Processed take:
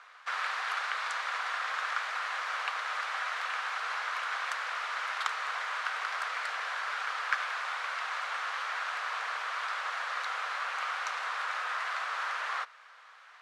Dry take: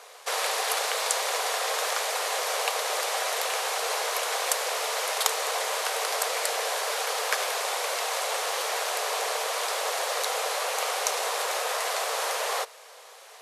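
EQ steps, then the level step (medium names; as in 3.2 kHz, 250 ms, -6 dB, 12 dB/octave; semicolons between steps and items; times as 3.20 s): ladder band-pass 1.6 kHz, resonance 50%; +7.0 dB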